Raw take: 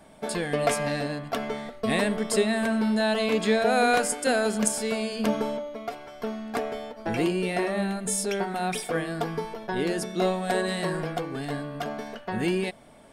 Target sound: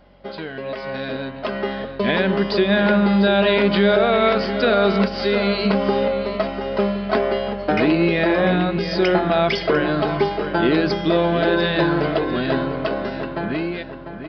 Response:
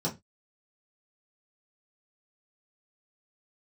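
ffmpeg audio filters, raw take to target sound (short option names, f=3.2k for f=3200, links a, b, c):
-filter_complex "[0:a]alimiter=limit=-19.5dB:level=0:latency=1:release=142,highpass=190,aeval=exprs='val(0)+0.002*(sin(2*PI*50*n/s)+sin(2*PI*2*50*n/s)/2+sin(2*PI*3*50*n/s)/3+sin(2*PI*4*50*n/s)/4+sin(2*PI*5*50*n/s)/5)':c=same,dynaudnorm=f=230:g=13:m=12dB,asplit=2[a][b];[b]adelay=640,lowpass=f=3.8k:p=1,volume=-9.5dB,asplit=2[c][d];[d]adelay=640,lowpass=f=3.8k:p=1,volume=0.45,asplit=2[e][f];[f]adelay=640,lowpass=f=3.8k:p=1,volume=0.45,asplit=2[g][h];[h]adelay=640,lowpass=f=3.8k:p=1,volume=0.45,asplit=2[i][j];[j]adelay=640,lowpass=f=3.8k:p=1,volume=0.45[k];[c][e][g][i][k]amix=inputs=5:normalize=0[l];[a][l]amix=inputs=2:normalize=0,asetrate=40517,aresample=44100,aresample=11025,aresample=44100"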